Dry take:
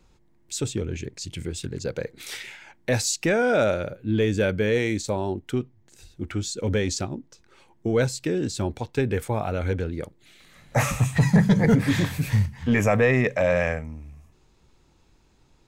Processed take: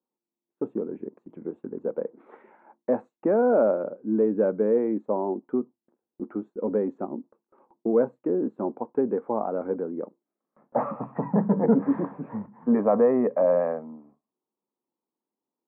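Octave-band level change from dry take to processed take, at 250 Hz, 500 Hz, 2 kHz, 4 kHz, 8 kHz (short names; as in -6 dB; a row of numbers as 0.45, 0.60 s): -1.0 dB, +1.5 dB, -17.5 dB, under -40 dB, under -40 dB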